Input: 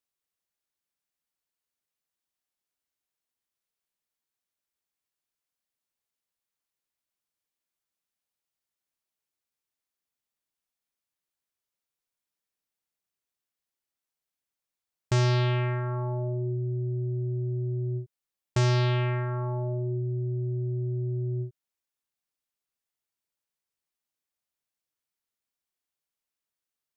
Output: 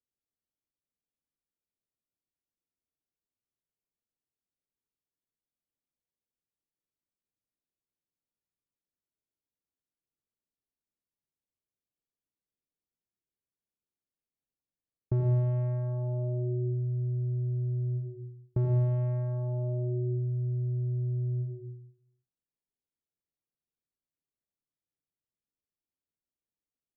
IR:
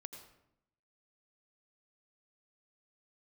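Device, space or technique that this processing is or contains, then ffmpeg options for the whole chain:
television next door: -filter_complex "[0:a]acompressor=threshold=-25dB:ratio=6,lowpass=410[a];[1:a]atrim=start_sample=2205[b];[a][b]afir=irnorm=-1:irlink=0,volume=6dB"

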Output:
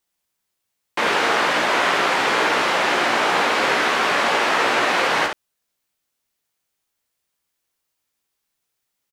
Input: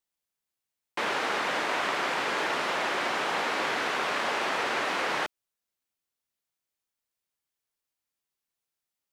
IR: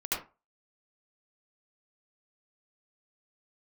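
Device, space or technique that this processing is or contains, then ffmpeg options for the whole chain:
slapback doubling: -filter_complex "[0:a]asplit=3[a][b][c];[b]adelay=17,volume=-5.5dB[d];[c]adelay=67,volume=-5dB[e];[a][d][e]amix=inputs=3:normalize=0,volume=8dB"

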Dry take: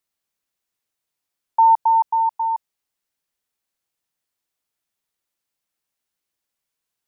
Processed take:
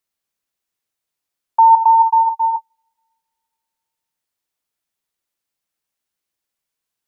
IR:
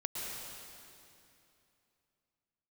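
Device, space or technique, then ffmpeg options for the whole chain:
keyed gated reverb: -filter_complex "[0:a]asplit=3[a][b][c];[1:a]atrim=start_sample=2205[d];[b][d]afir=irnorm=-1:irlink=0[e];[c]apad=whole_len=312200[f];[e][f]sidechaingate=range=-41dB:threshold=-24dB:ratio=16:detection=peak,volume=-3dB[g];[a][g]amix=inputs=2:normalize=0"

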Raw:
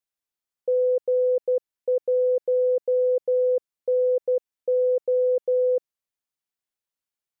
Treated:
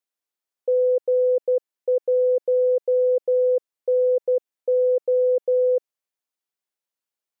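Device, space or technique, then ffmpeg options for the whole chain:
filter by subtraction: -filter_complex "[0:a]asplit=2[a][b];[b]lowpass=430,volume=-1[c];[a][c]amix=inputs=2:normalize=0"

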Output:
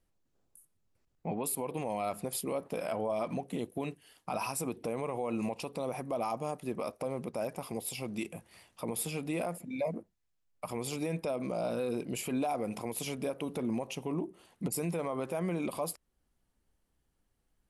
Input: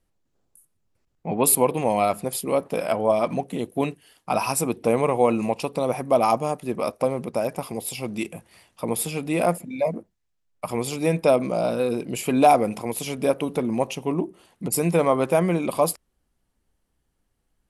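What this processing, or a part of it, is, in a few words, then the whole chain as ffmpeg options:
stacked limiters: -af "alimiter=limit=-11dB:level=0:latency=1:release=230,alimiter=limit=-16.5dB:level=0:latency=1:release=46,alimiter=limit=-20.5dB:level=0:latency=1:release=382,volume=-4dB"

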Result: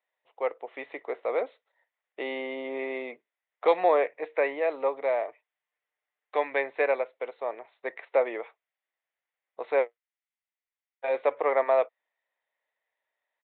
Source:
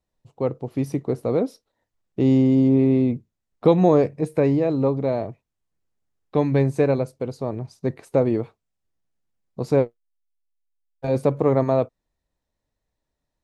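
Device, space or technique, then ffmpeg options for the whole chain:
musical greeting card: -filter_complex "[0:a]aresample=8000,aresample=44100,highpass=f=550:w=0.5412,highpass=f=550:w=1.3066,equalizer=f=2k:t=o:w=0.48:g=10.5,asettb=1/sr,asplit=3[a][b][c];[a]atrim=end=5.274[d];[b]atrim=start=5.27:end=6.36,asetpts=PTS-STARTPTS,afade=t=in:d=0.004:c=qsin,afade=t=out:st=1.086:d=0.004:c=qsin,aecho=1:1:6.7:0.48,atrim=end_sample=48069[e];[c]atrim=start=6.356[f];[d][e]acrossfade=d=0.004:c1=hsin:c2=qsin[g];[g][f]acrossfade=d=0.004:c1=qsin:c2=hsin"

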